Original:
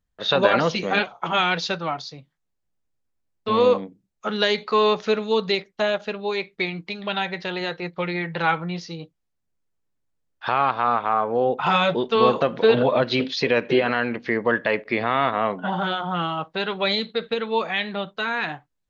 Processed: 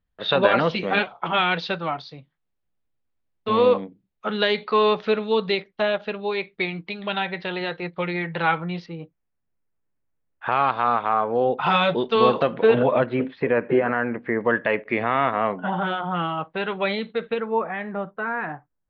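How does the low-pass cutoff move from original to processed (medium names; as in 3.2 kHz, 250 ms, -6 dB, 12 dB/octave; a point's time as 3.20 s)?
low-pass 24 dB/octave
3.9 kHz
from 8.86 s 2.5 kHz
from 10.52 s 4.7 kHz
from 12.54 s 2.9 kHz
from 13.06 s 1.9 kHz
from 14.41 s 2.9 kHz
from 17.40 s 1.7 kHz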